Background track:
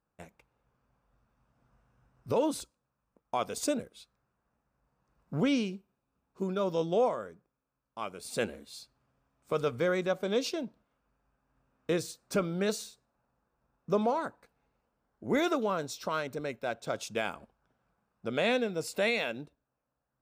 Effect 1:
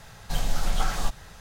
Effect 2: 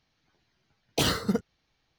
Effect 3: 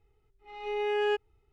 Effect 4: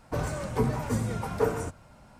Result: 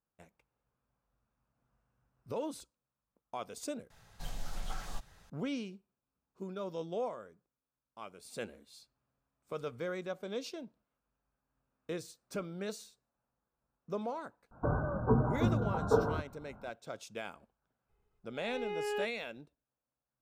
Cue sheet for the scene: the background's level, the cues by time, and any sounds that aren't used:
background track -9.5 dB
3.9 replace with 1 -14.5 dB
14.51 add 4 -1 dB + Chebyshev low-pass 1600 Hz, order 10
17.89 add 3 -8 dB
not used: 2

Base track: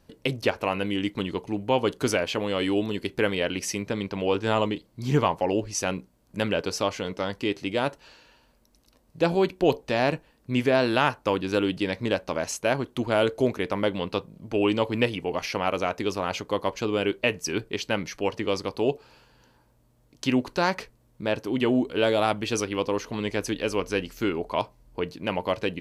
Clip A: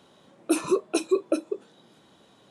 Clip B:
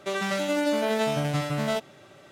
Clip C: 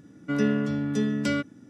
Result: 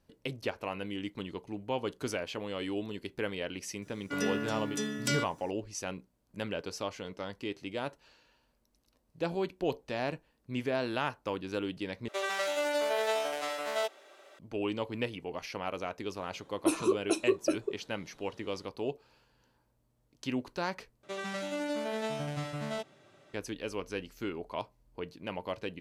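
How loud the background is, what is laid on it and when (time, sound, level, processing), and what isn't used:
base track -10.5 dB
3.82 add C -4 dB + RIAA curve recording
12.08 replace with B -3.5 dB + HPF 410 Hz 24 dB/oct
16.16 add A -4.5 dB
21.03 replace with B -9.5 dB + LPF 11000 Hz

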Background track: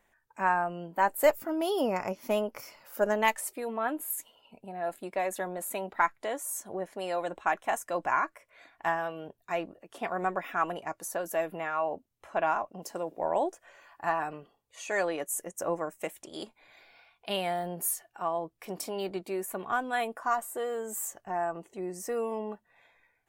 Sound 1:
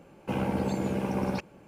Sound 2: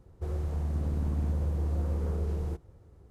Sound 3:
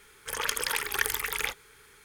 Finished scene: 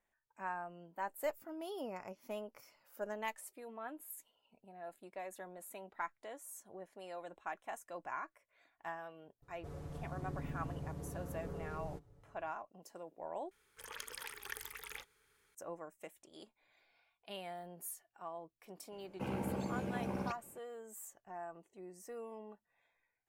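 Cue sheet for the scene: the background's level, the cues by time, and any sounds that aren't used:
background track -15 dB
9.42 add 2 -9.5 dB + comb 7 ms, depth 79%
13.51 replace with 3 -17.5 dB
18.92 add 1 -10 dB

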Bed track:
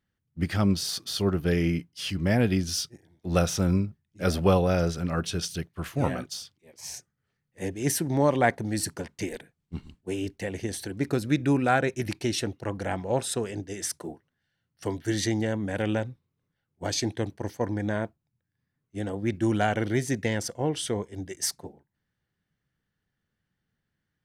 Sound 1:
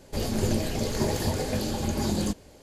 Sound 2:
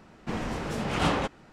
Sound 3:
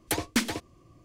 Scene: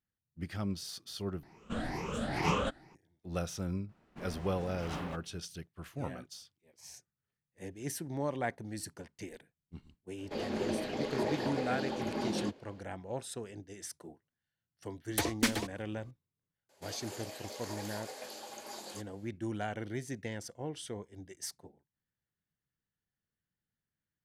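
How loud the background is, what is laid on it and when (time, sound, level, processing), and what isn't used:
bed track -12.5 dB
1.43 replace with 2 -7 dB + moving spectral ripple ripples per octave 0.78, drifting +2.2 Hz, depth 14 dB
3.89 add 2 -15 dB + decimation joined by straight lines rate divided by 3×
10.18 add 1 -4 dB + three-band isolator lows -23 dB, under 200 Hz, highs -22 dB, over 4200 Hz
15.07 add 3 -3 dB
16.69 add 1 -10.5 dB + Chebyshev high-pass 700 Hz

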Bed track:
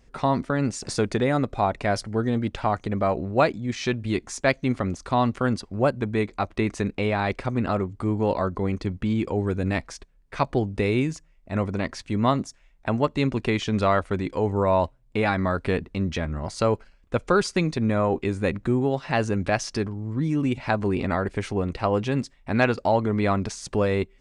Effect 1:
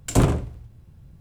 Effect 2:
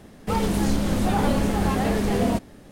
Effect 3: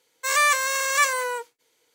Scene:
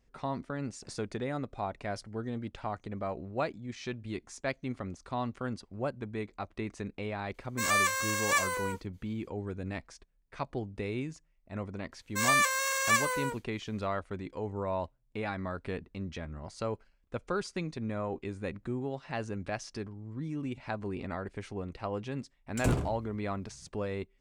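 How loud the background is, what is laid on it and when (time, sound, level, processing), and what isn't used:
bed track -12.5 dB
7.34 add 3 -7.5 dB
11.92 add 3 -6 dB
22.49 add 1 -11 dB
not used: 2

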